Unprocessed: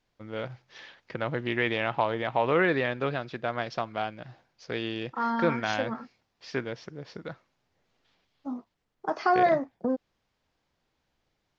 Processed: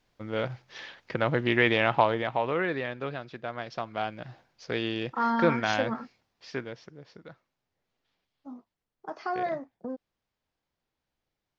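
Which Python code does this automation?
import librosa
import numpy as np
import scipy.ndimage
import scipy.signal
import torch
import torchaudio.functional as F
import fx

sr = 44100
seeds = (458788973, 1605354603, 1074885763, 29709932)

y = fx.gain(x, sr, db=fx.line((2.0, 4.5), (2.56, -5.0), (3.64, -5.0), (4.18, 2.0), (6.02, 2.0), (7.16, -8.5)))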